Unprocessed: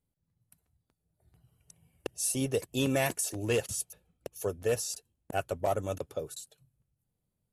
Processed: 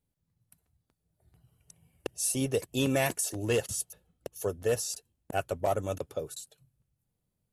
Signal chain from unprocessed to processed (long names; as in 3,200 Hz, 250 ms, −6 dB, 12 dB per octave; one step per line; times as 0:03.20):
0:03.18–0:04.85: notch filter 2,400 Hz, Q 9.5
level +1 dB